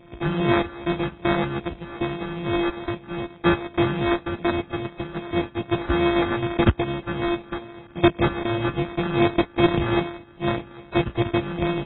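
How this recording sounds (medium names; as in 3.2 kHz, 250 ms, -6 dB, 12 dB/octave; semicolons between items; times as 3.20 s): a buzz of ramps at a fixed pitch in blocks of 128 samples; phasing stages 12, 2.5 Hz, lowest notch 800–2500 Hz; aliases and images of a low sample rate 2.9 kHz, jitter 0%; AAC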